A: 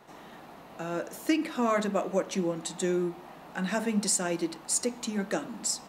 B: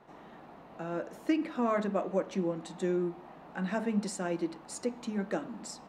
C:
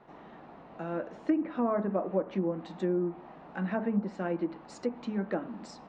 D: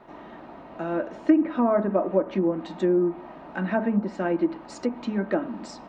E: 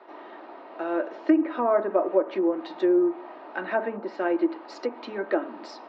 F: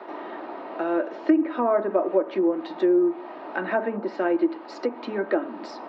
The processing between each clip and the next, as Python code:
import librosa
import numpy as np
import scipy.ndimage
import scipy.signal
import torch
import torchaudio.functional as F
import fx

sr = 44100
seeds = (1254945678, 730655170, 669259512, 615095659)

y1 = fx.lowpass(x, sr, hz=1600.0, slope=6)
y1 = y1 * 10.0 ** (-2.0 / 20.0)
y2 = fx.env_lowpass_down(y1, sr, base_hz=1100.0, full_db=-26.0)
y2 = fx.air_absorb(y2, sr, metres=130.0)
y2 = y2 * 10.0 ** (1.5 / 20.0)
y3 = y2 + 0.34 * np.pad(y2, (int(3.2 * sr / 1000.0), 0))[:len(y2)]
y3 = y3 * 10.0 ** (6.5 / 20.0)
y4 = scipy.signal.sosfilt(scipy.signal.cheby1(3, 1.0, [340.0, 4900.0], 'bandpass', fs=sr, output='sos'), y3)
y4 = y4 * 10.0 ** (1.5 / 20.0)
y5 = fx.low_shelf(y4, sr, hz=160.0, db=11.5)
y5 = fx.band_squash(y5, sr, depth_pct=40)